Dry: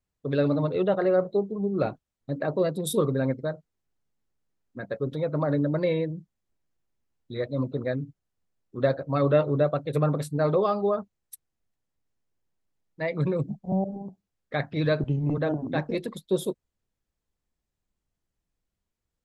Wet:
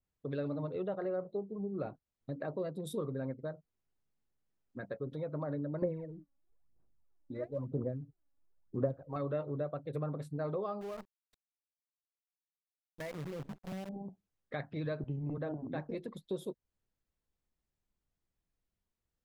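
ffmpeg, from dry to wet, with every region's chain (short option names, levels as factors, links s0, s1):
-filter_complex "[0:a]asettb=1/sr,asplit=3[s0][s1][s2];[s0]atrim=end=5.824[s3];[s1]atrim=start=5.82:end=9.16,asetpts=PTS-STARTPTS,afade=t=in:d=0.004:c=qsin,afade=t=out:st=3.336:d=0.004:c=qsin,lowpass=1200,aphaser=in_gain=1:out_gain=1:delay=3.6:decay=0.75:speed=1:type=sinusoidal[s4];[s2]atrim=start=9.156[s5];[s3][s4]acrossfade=d=0.004:c1=hsin:c2=qsin[s6];[s6][s5]acrossfade=d=0.004:c1=qsin:c2=hsin,asettb=1/sr,asplit=3[s7][s8][s9];[s7]atrim=end=10.814[s10];[s8]atrim=start=10.81:end=13.89,asetpts=PTS-STARTPTS,afade=t=in:d=0.004:c=qsin,afade=t=out:st=3.076:d=0.004:c=qsin,lowpass=f=4100:w=0.5412,lowpass=f=4100:w=1.3066,acompressor=threshold=0.0158:ratio=2:attack=3.2:release=140:knee=1:detection=peak,acrusher=bits=7:dc=4:mix=0:aa=0.000001[s11];[s9]atrim=start=13.886[s12];[s10][s11]acrossfade=d=0.004:c1=hsin:c2=qsin[s13];[s13][s12]acrossfade=d=0.004:c1=qsin:c2=hsin,highshelf=f=5100:g=-5.5,acompressor=threshold=0.0141:ratio=2,adynamicequalizer=threshold=0.00251:dfrequency=1800:dqfactor=0.7:tfrequency=1800:tqfactor=0.7:attack=5:release=100:ratio=0.375:range=3:mode=cutabove:tftype=highshelf,volume=0.631"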